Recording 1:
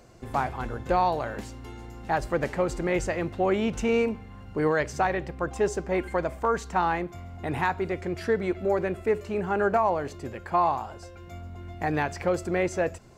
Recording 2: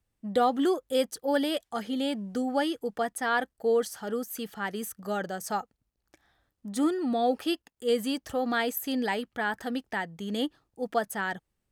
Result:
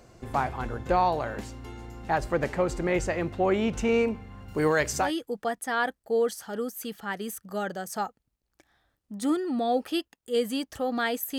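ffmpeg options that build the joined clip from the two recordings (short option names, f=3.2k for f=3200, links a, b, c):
-filter_complex "[0:a]asettb=1/sr,asplit=3[a][b][c];[a]atrim=end=4.484[d];[b]atrim=start=4.48:end=5.12,asetpts=PTS-STARTPTS,afade=t=in:d=0.004:c=qsin,afade=t=out:st=0.636:d=0.004:c=qsin,aemphasis=mode=production:type=75kf[e];[c]atrim=start=5.116[f];[d][e]acrossfade=d=0.004:c1=hsin:c2=qsin[g];[g][f]acrossfade=d=0.004:c1=qsin:c2=hsin,apad=whole_dur=11.38,atrim=end=11.38,atrim=end=5.12,asetpts=PTS-STARTPTS[h];[1:a]atrim=start=2.52:end=8.92,asetpts=PTS-STARTPTS[i];[h][i]acrossfade=d=0.14:c1=tri:c2=tri"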